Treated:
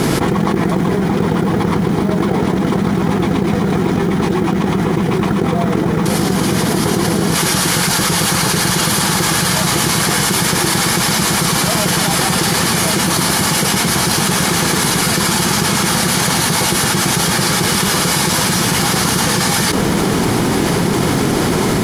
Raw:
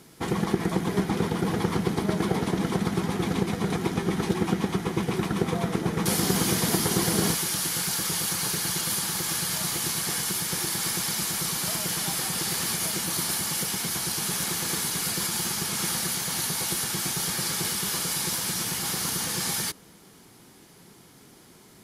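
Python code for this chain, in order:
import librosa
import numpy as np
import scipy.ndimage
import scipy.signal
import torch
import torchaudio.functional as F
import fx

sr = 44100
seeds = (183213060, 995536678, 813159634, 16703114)

y = scipy.signal.sosfilt(scipy.signal.butter(2, 12000.0, 'lowpass', fs=sr, output='sos'), x)
y = fx.high_shelf(y, sr, hz=2500.0, db=-9.5)
y = fx.quant_float(y, sr, bits=4)
y = fx.env_flatten(y, sr, amount_pct=100)
y = y * 10.0 ** (5.5 / 20.0)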